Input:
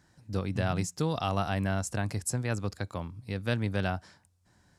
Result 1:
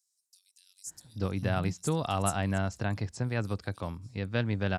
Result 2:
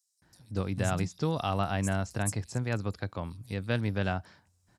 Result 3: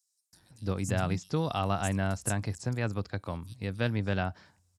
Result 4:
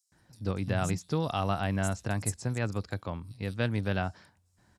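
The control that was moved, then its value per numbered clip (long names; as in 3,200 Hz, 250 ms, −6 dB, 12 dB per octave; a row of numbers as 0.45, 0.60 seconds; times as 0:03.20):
multiband delay without the direct sound, delay time: 870, 220, 330, 120 milliseconds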